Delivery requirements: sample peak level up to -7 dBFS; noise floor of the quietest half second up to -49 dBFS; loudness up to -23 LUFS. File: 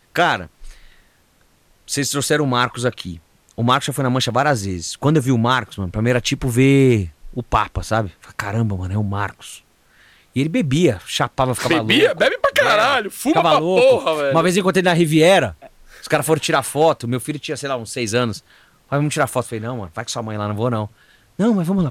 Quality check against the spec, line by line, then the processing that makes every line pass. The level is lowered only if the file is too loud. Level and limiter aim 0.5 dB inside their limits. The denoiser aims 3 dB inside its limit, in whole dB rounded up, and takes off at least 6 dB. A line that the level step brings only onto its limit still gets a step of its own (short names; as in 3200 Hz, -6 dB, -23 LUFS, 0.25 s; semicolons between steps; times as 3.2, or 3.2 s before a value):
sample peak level -4.0 dBFS: fail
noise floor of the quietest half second -57 dBFS: OK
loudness -18.0 LUFS: fail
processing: gain -5.5 dB